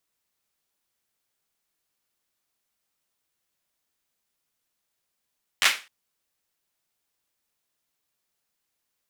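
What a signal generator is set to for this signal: hand clap length 0.26 s, apart 11 ms, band 2200 Hz, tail 0.30 s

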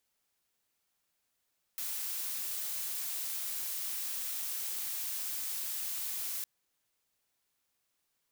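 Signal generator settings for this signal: noise blue, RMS -37 dBFS 4.66 s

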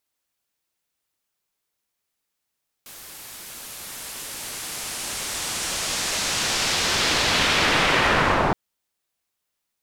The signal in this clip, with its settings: swept filtered noise white, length 5.67 s lowpass, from 15000 Hz, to 790 Hz, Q 0.94, linear, gain ramp +34 dB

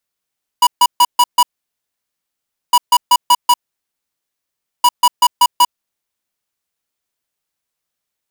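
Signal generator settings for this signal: beep pattern square 974 Hz, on 0.05 s, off 0.14 s, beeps 5, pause 1.30 s, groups 3, -8.5 dBFS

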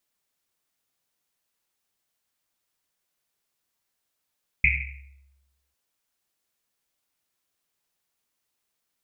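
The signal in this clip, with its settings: Risset drum, pitch 68 Hz, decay 1.16 s, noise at 2300 Hz, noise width 500 Hz, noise 60%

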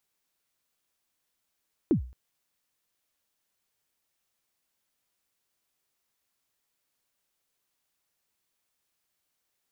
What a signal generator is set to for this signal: kick drum length 0.22 s, from 380 Hz, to 62 Hz, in 0.103 s, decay 0.40 s, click off, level -16 dB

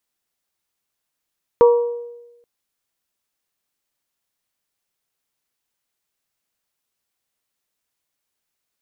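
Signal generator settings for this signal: glass hit bell, length 0.83 s, lowest mode 476 Hz, modes 3, decay 1.05 s, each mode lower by 9.5 dB, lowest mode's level -6 dB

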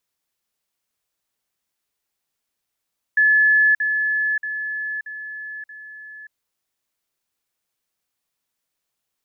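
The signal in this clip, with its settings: level ladder 1720 Hz -12 dBFS, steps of -6 dB, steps 5, 0.58 s 0.05 s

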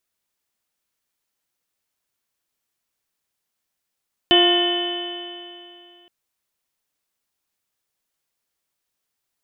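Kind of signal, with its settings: stretched partials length 1.77 s, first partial 349 Hz, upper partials -4/-14.5/-19/-9.5/-18.5/-14/2.5/-12 dB, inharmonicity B 0.0027, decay 2.64 s, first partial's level -15 dB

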